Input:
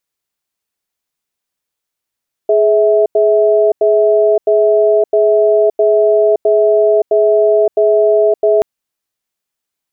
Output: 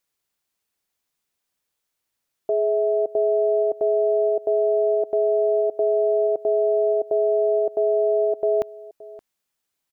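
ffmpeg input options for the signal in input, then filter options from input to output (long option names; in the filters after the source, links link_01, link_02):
-f lavfi -i "aevalsrc='0.316*(sin(2*PI*420*t)+sin(2*PI*651*t))*clip(min(mod(t,0.66),0.57-mod(t,0.66))/0.005,0,1)':duration=6.13:sample_rate=44100"
-filter_complex "[0:a]alimiter=limit=-14.5dB:level=0:latency=1:release=68,asplit=2[link_01][link_02];[link_02]adelay=571.4,volume=-19dB,highshelf=frequency=4000:gain=-12.9[link_03];[link_01][link_03]amix=inputs=2:normalize=0"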